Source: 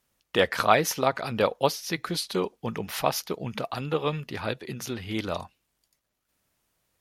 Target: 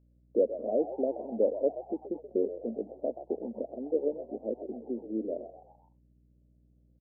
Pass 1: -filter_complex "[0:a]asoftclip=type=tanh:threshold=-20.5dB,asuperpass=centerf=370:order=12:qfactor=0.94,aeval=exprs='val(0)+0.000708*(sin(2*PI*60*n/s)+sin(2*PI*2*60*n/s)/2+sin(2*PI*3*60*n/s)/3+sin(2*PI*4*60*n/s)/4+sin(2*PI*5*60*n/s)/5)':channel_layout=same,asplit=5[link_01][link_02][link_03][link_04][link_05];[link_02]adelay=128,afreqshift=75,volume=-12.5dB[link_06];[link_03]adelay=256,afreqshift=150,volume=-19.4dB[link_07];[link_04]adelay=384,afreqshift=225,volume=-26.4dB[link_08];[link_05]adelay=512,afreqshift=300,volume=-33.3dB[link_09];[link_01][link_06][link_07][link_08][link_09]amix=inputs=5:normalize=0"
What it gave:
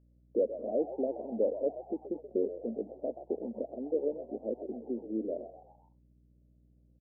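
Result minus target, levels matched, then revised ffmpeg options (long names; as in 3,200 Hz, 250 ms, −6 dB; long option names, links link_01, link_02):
soft clipping: distortion +7 dB
-filter_complex "[0:a]asoftclip=type=tanh:threshold=-12.5dB,asuperpass=centerf=370:order=12:qfactor=0.94,aeval=exprs='val(0)+0.000708*(sin(2*PI*60*n/s)+sin(2*PI*2*60*n/s)/2+sin(2*PI*3*60*n/s)/3+sin(2*PI*4*60*n/s)/4+sin(2*PI*5*60*n/s)/5)':channel_layout=same,asplit=5[link_01][link_02][link_03][link_04][link_05];[link_02]adelay=128,afreqshift=75,volume=-12.5dB[link_06];[link_03]adelay=256,afreqshift=150,volume=-19.4dB[link_07];[link_04]adelay=384,afreqshift=225,volume=-26.4dB[link_08];[link_05]adelay=512,afreqshift=300,volume=-33.3dB[link_09];[link_01][link_06][link_07][link_08][link_09]amix=inputs=5:normalize=0"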